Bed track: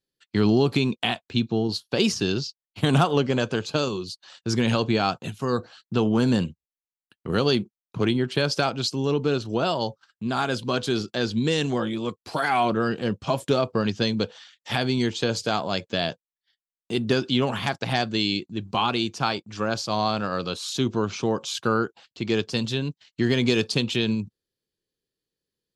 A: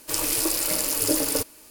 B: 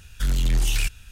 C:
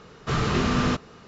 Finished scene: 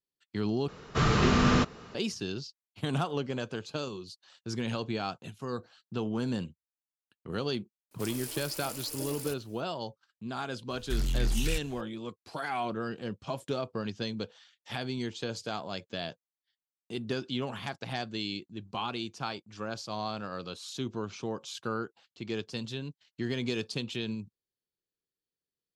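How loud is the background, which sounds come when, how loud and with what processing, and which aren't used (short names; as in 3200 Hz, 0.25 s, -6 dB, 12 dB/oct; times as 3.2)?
bed track -11 dB
0.68 replace with C -0.5 dB
7.91 add A -16.5 dB
10.7 add B -7.5 dB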